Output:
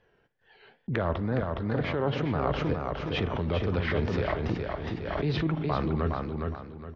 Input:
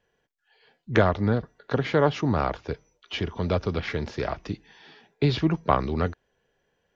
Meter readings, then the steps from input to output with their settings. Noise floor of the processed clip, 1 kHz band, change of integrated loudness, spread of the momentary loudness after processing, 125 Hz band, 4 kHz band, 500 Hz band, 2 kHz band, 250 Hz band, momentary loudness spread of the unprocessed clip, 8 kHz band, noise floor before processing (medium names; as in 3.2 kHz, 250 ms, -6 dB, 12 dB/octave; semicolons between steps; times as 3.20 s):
-68 dBFS, -4.5 dB, -3.5 dB, 6 LU, -1.5 dB, -3.0 dB, -3.5 dB, -2.5 dB, -2.5 dB, 13 LU, no reading, -74 dBFS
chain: gate -50 dBFS, range -38 dB; reverse; compression 6:1, threshold -31 dBFS, peak gain reduction 16.5 dB; reverse; spring tank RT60 1.1 s, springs 35/53 ms, chirp 30 ms, DRR 14.5 dB; wow and flutter 120 cents; distance through air 220 m; on a send: feedback delay 414 ms, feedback 33%, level -4 dB; on the sum: swell ahead of each attack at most 38 dB/s; trim +5 dB